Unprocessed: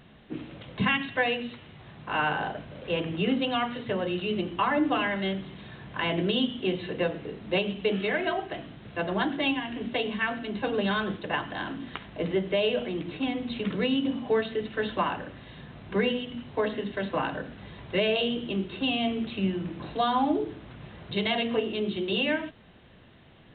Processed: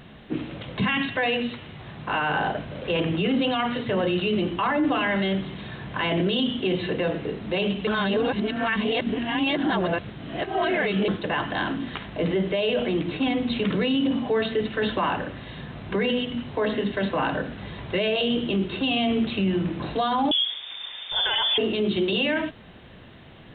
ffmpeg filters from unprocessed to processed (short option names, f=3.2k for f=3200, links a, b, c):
-filter_complex "[0:a]asettb=1/sr,asplit=3[a][b][c];[a]atrim=end=20.314[d];[b]atrim=start=20.31:end=21.58,asetpts=PTS-STARTPTS,afade=t=in:d=0.004:c=qsin,afade=t=out:st=1.266:d=0.004:c=qsin,lowpass=f=3.1k:t=q:w=0.5098,lowpass=f=3.1k:t=q:w=0.6013,lowpass=f=3.1k:t=q:w=0.9,lowpass=f=3.1k:t=q:w=2.563,afreqshift=-3700[e];[c]atrim=start=21.576[f];[d][e]acrossfade=d=0.004:c1=hsin:c2=qsin[g];[g][f]acrossfade=d=0.004:c1=qsin:c2=hsin,asplit=3[h][i][j];[h]atrim=end=7.872[k];[i]atrim=start=7.868:end=11.082,asetpts=PTS-STARTPTS,areverse[l];[j]atrim=start=11.078[m];[k][l]acrossfade=d=0.004:c1=hsin:c2=hsin[n];[n][m]acrossfade=d=0.004:c1=hsin:c2=hsin,alimiter=limit=-23.5dB:level=0:latency=1:release=10,volume=7.5dB"